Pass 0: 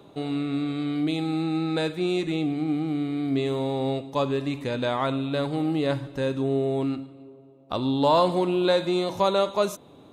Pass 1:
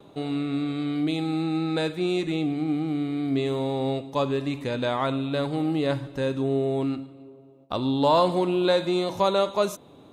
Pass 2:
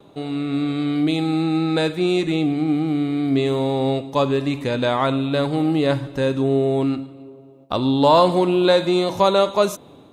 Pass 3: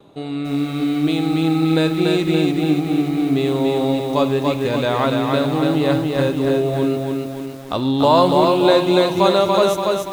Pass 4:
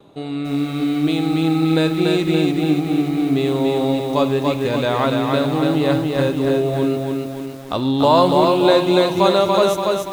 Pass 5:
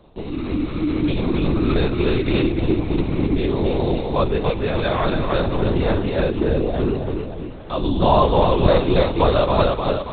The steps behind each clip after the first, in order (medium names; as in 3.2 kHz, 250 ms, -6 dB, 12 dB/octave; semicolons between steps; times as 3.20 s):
gate with hold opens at -45 dBFS
level rider gain up to 4.5 dB; trim +1.5 dB
bit-crushed delay 287 ms, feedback 55%, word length 7-bit, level -3 dB
no audible change
LPC vocoder at 8 kHz whisper; trim -1.5 dB